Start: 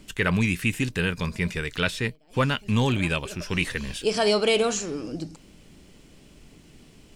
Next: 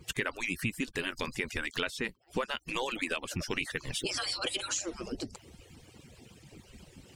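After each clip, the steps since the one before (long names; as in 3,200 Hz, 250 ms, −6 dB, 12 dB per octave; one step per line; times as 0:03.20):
harmonic-percussive split with one part muted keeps percussive
downward compressor 5 to 1, threshold −34 dBFS, peak gain reduction 14 dB
level +3.5 dB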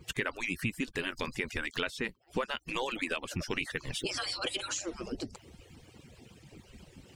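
parametric band 11,000 Hz −4 dB 1.9 octaves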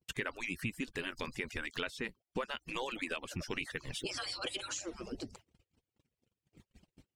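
noise gate −49 dBFS, range −34 dB
level −4.5 dB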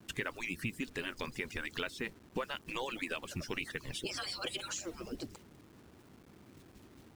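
noise in a band 58–370 Hz −59 dBFS
bit reduction 10 bits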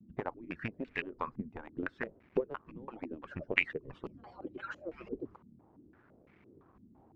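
harmonic generator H 3 −11 dB, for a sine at −20.5 dBFS
low-pass on a step sequencer 5.9 Hz 220–2,200 Hz
level +9.5 dB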